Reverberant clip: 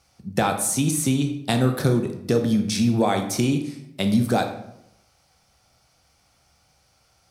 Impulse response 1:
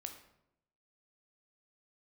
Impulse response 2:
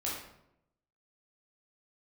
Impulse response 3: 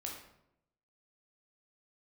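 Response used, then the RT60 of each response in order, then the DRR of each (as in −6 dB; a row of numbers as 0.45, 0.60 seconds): 1; 0.80, 0.80, 0.80 seconds; 5.0, −6.0, −1.0 decibels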